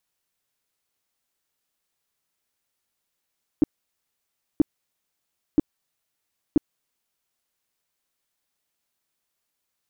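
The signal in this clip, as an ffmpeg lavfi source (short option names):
-f lavfi -i "aevalsrc='0.266*sin(2*PI*302*mod(t,0.98))*lt(mod(t,0.98),5/302)':d=3.92:s=44100"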